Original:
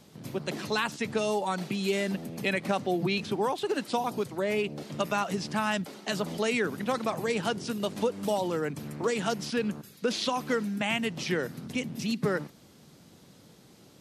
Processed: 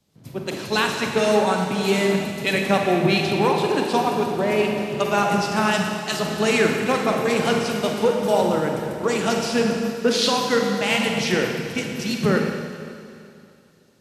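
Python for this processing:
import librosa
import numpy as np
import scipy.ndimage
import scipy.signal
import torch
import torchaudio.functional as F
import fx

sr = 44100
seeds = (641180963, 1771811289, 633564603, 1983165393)

y = fx.rev_schroeder(x, sr, rt60_s=3.9, comb_ms=38, drr_db=0.0)
y = fx.band_widen(y, sr, depth_pct=70)
y = F.gain(torch.from_numpy(y), 6.5).numpy()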